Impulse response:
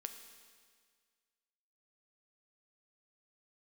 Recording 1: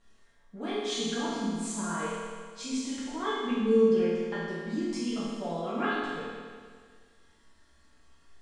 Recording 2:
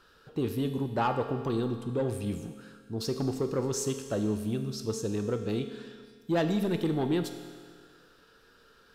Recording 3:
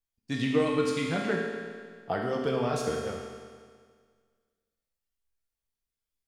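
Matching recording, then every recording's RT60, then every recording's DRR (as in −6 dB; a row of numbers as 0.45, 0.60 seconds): 2; 1.8, 1.8, 1.8 seconds; −11.0, 6.0, −2.0 decibels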